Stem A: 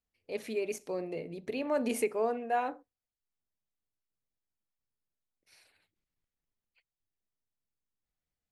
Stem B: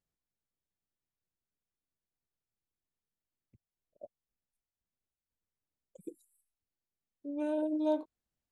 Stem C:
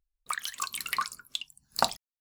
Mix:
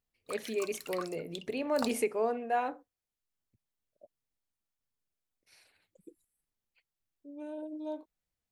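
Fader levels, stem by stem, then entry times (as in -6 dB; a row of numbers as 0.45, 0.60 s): 0.0, -8.5, -11.5 dB; 0.00, 0.00, 0.00 s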